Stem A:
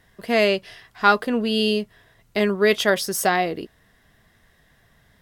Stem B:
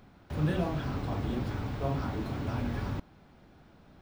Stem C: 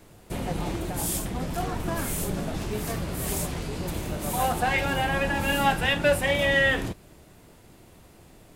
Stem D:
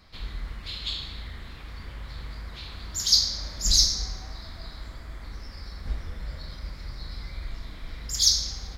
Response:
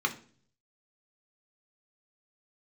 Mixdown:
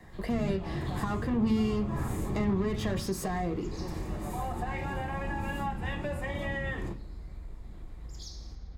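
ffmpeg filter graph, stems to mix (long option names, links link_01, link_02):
-filter_complex "[0:a]alimiter=limit=-13.5dB:level=0:latency=1:release=36,asoftclip=type=tanh:threshold=-25dB,volume=2.5dB,asplit=3[link_01][link_02][link_03];[link_02]volume=-10.5dB[link_04];[1:a]alimiter=level_in=2.5dB:limit=-24dB:level=0:latency=1,volume=-2.5dB,volume=-4dB,asplit=2[link_05][link_06];[link_06]volume=-9dB[link_07];[2:a]volume=-7.5dB,asplit=2[link_08][link_09];[link_09]volume=-8.5dB[link_10];[3:a]tiltshelf=frequency=730:gain=7.5,acompressor=threshold=-32dB:ratio=3,volume=-8dB[link_11];[link_03]apad=whole_len=377092[link_12];[link_08][link_12]sidechaincompress=threshold=-36dB:ratio=8:attack=16:release=219[link_13];[4:a]atrim=start_sample=2205[link_14];[link_04][link_07][link_10]amix=inputs=3:normalize=0[link_15];[link_15][link_14]afir=irnorm=-1:irlink=0[link_16];[link_01][link_05][link_13][link_11][link_16]amix=inputs=5:normalize=0,highshelf=frequency=5200:gain=-8,acrossover=split=230[link_17][link_18];[link_18]acompressor=threshold=-34dB:ratio=4[link_19];[link_17][link_19]amix=inputs=2:normalize=0"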